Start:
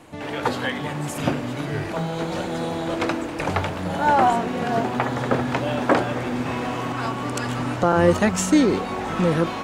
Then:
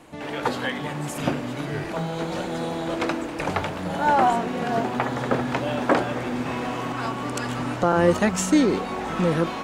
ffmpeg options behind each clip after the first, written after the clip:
ffmpeg -i in.wav -af "equalizer=frequency=100:width=3.9:gain=-7.5,volume=-1.5dB" out.wav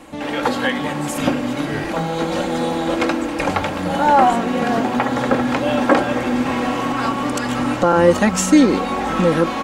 ffmpeg -i in.wav -filter_complex "[0:a]asplit=2[link_01][link_02];[link_02]alimiter=limit=-16dB:level=0:latency=1:release=179,volume=-3dB[link_03];[link_01][link_03]amix=inputs=2:normalize=0,aecho=1:1:3.7:0.43,volume=2dB" out.wav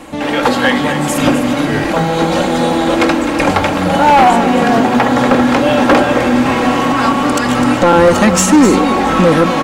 ffmpeg -i in.wav -af "acontrast=25,asoftclip=type=hard:threshold=-7dB,aecho=1:1:256:0.299,volume=3dB" out.wav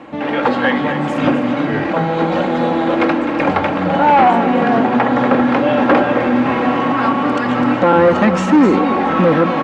ffmpeg -i in.wav -af "highpass=110,lowpass=2500,volume=-2.5dB" out.wav

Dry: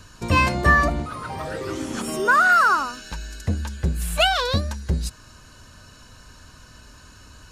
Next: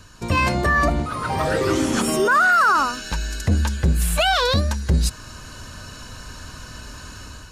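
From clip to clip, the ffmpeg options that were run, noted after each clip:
ffmpeg -i in.wav -af "dynaudnorm=framelen=150:gausssize=5:maxgain=9.5dB,alimiter=limit=-10dB:level=0:latency=1:release=11" out.wav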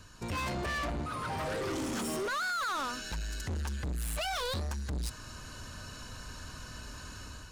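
ffmpeg -i in.wav -af "asoftclip=type=tanh:threshold=-25dB,volume=-7dB" out.wav

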